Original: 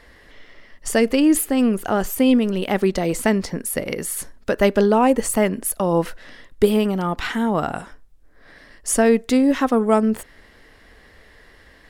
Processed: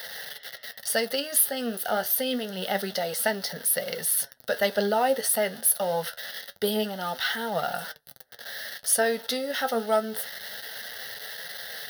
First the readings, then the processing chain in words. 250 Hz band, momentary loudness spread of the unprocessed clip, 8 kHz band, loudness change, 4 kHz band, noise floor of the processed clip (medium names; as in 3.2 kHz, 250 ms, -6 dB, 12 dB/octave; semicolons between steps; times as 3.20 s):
-16.5 dB, 10 LU, +0.5 dB, -7.0 dB, +2.0 dB, -52 dBFS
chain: jump at every zero crossing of -30 dBFS; Bessel high-pass 290 Hz, order 2; treble shelf 3 kHz +11 dB; static phaser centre 1.6 kHz, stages 8; flange 0.26 Hz, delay 5.4 ms, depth 8.5 ms, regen +56%